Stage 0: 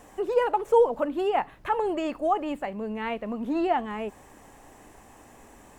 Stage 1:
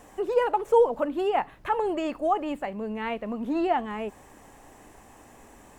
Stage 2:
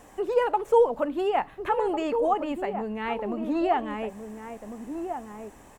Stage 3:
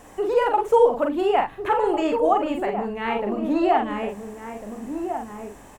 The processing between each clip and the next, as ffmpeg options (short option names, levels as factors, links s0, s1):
-af anull
-filter_complex "[0:a]asplit=2[s0][s1];[s1]adelay=1399,volume=0.447,highshelf=f=4000:g=-31.5[s2];[s0][s2]amix=inputs=2:normalize=0"
-filter_complex "[0:a]asplit=2[s0][s1];[s1]adelay=44,volume=0.631[s2];[s0][s2]amix=inputs=2:normalize=0,volume=1.5"